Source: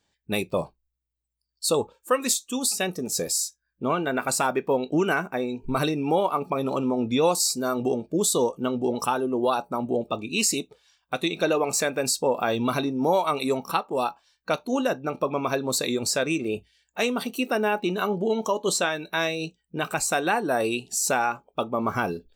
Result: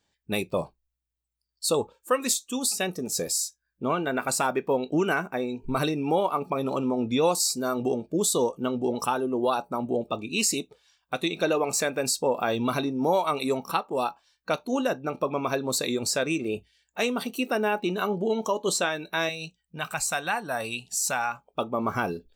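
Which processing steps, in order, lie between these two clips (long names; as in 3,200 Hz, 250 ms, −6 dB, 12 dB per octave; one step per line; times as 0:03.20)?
0:19.29–0:21.48: parametric band 360 Hz −14.5 dB 1.1 octaves
level −1.5 dB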